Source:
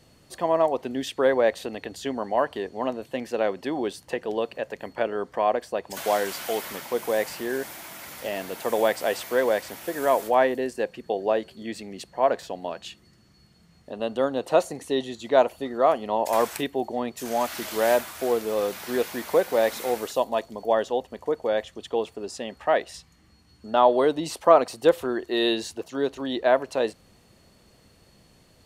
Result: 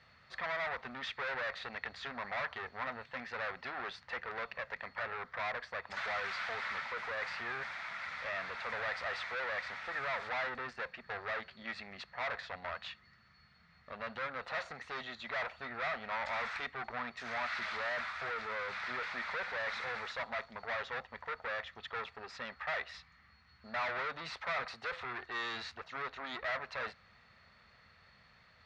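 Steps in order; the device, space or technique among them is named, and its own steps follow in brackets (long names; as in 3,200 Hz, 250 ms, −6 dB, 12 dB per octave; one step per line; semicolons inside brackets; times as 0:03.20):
scooped metal amplifier (tube saturation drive 33 dB, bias 0.55; loudspeaker in its box 84–3,400 Hz, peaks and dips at 110 Hz −4 dB, 240 Hz +7 dB, 1,300 Hz +7 dB, 1,900 Hz +5 dB, 3,000 Hz −10 dB; guitar amp tone stack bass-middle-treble 10-0-10)
level +8 dB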